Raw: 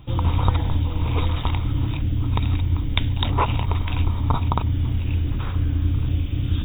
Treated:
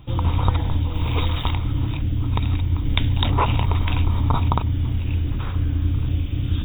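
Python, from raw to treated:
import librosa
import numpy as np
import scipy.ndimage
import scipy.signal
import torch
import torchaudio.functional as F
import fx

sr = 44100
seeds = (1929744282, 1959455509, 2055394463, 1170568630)

y = fx.high_shelf(x, sr, hz=2900.0, db=8.0, at=(0.94, 1.53))
y = fx.env_flatten(y, sr, amount_pct=50, at=(2.85, 4.58))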